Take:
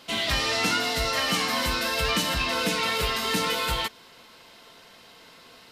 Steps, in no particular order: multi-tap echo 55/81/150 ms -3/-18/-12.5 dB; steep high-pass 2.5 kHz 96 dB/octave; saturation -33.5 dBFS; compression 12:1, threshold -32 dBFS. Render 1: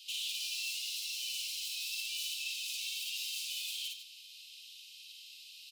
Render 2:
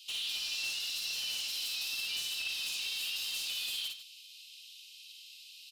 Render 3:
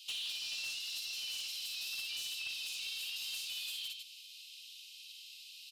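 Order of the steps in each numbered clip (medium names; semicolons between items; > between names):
saturation > multi-tap echo > compression > steep high-pass; steep high-pass > compression > saturation > multi-tap echo; multi-tap echo > compression > steep high-pass > saturation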